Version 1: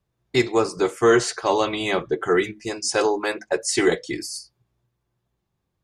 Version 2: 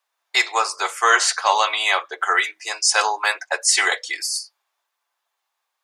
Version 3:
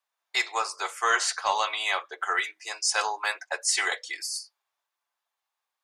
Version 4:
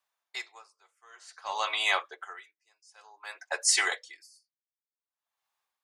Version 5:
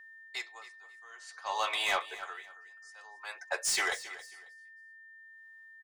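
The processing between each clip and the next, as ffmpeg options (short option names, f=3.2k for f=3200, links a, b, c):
-af "highpass=f=790:w=0.5412,highpass=f=790:w=1.3066,volume=8dB"
-af "aeval=exprs='0.891*(cos(1*acos(clip(val(0)/0.891,-1,1)))-cos(1*PI/2))+0.0251*(cos(2*acos(clip(val(0)/0.891,-1,1)))-cos(2*PI/2))':c=same,volume=-8dB"
-af "aeval=exprs='val(0)*pow(10,-36*(0.5-0.5*cos(2*PI*0.54*n/s))/20)':c=same,volume=1.5dB"
-filter_complex "[0:a]acrossover=split=630|830[a][b][c];[c]asoftclip=type=tanh:threshold=-26.5dB[d];[a][b][d]amix=inputs=3:normalize=0,aeval=exprs='val(0)+0.00316*sin(2*PI*1800*n/s)':c=same,aecho=1:1:272|544:0.158|0.0396"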